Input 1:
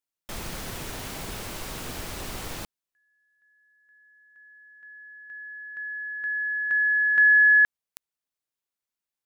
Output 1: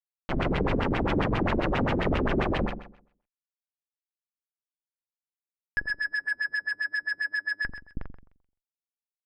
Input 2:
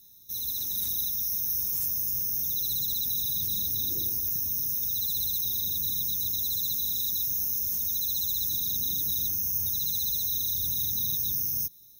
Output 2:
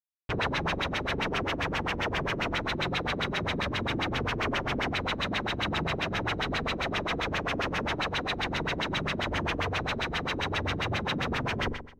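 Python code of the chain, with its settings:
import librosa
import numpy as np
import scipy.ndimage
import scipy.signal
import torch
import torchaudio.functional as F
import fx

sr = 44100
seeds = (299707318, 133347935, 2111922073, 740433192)

y = fx.schmitt(x, sr, flips_db=-33.0)
y = fx.room_flutter(y, sr, wall_m=7.4, rt60_s=0.62)
y = fx.filter_lfo_lowpass(y, sr, shape='sine', hz=7.5, low_hz=250.0, high_hz=3000.0, q=2.3)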